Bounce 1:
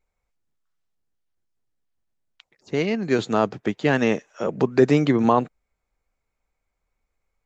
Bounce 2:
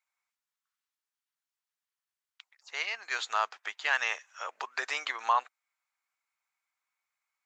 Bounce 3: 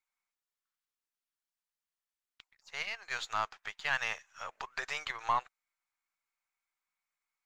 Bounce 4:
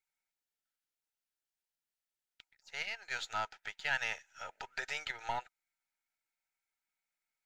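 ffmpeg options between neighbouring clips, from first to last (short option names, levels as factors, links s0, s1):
-af "highpass=f=980:w=0.5412,highpass=f=980:w=1.3066,volume=0.891"
-af "aeval=exprs='if(lt(val(0),0),0.708*val(0),val(0))':c=same,volume=0.708"
-af "asuperstop=centerf=1100:order=12:qfactor=4.1,volume=0.841"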